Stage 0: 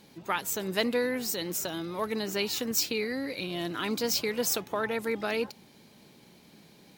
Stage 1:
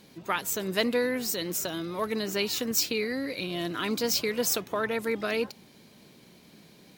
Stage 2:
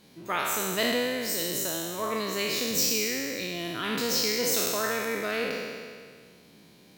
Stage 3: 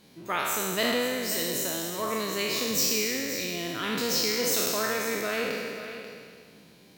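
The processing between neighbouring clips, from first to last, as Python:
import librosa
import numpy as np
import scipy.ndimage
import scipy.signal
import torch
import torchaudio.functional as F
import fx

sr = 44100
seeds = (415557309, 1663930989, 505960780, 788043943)

y1 = fx.notch(x, sr, hz=840.0, q=12.0)
y1 = y1 * 10.0 ** (1.5 / 20.0)
y2 = fx.spec_trails(y1, sr, decay_s=1.89)
y2 = y2 * 10.0 ** (-4.0 / 20.0)
y3 = y2 + 10.0 ** (-11.0 / 20.0) * np.pad(y2, (int(537 * sr / 1000.0), 0))[:len(y2)]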